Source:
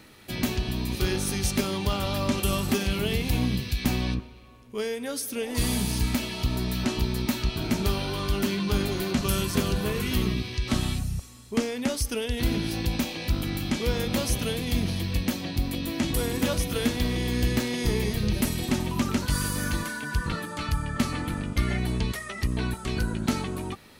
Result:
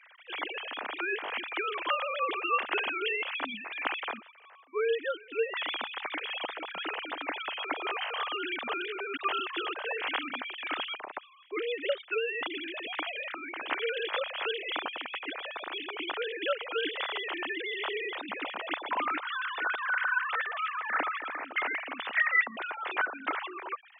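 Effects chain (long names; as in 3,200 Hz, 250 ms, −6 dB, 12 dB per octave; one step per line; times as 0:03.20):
three sine waves on the formant tracks
high-pass filter 830 Hz 12 dB per octave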